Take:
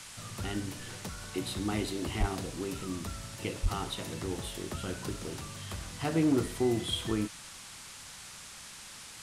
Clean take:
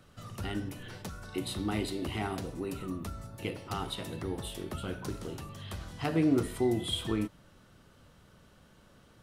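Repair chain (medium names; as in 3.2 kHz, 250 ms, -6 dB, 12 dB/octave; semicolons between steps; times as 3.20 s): clip repair -20 dBFS; 2.19–2.31 s: high-pass 140 Hz 24 dB/octave; 3.62–3.74 s: high-pass 140 Hz 24 dB/octave; noise print and reduce 12 dB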